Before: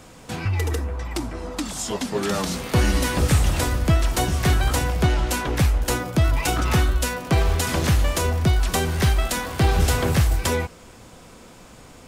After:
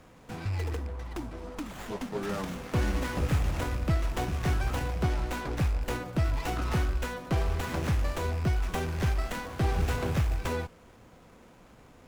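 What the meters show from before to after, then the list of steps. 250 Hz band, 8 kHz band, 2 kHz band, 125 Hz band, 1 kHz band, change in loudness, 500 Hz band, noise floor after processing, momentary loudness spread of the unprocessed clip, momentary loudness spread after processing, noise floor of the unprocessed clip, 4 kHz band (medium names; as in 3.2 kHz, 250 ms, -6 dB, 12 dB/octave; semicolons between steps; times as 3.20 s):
-8.5 dB, -17.0 dB, -9.5 dB, -8.5 dB, -9.0 dB, -9.0 dB, -8.5 dB, -55 dBFS, 8 LU, 9 LU, -46 dBFS, -13.5 dB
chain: rattle on loud lows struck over -21 dBFS, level -24 dBFS; sliding maximum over 9 samples; trim -8.5 dB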